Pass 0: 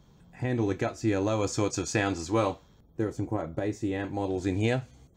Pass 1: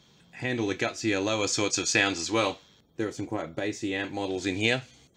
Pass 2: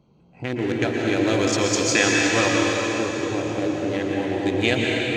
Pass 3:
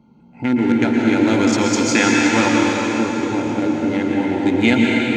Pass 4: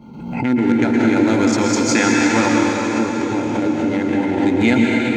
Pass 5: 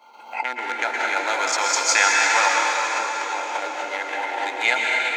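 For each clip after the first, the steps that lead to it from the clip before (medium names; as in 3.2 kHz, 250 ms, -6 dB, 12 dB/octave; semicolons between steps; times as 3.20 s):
frequency weighting D
local Wiener filter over 25 samples; plate-style reverb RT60 4.4 s, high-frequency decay 0.95×, pre-delay 105 ms, DRR -3 dB; trim +3.5 dB
small resonant body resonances 240/880/1400/2100 Hz, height 16 dB, ringing for 60 ms
dynamic bell 3 kHz, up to -6 dB, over -38 dBFS, Q 2.5; swell ahead of each attack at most 56 dB/s
high-pass 700 Hz 24 dB/octave; trim +2.5 dB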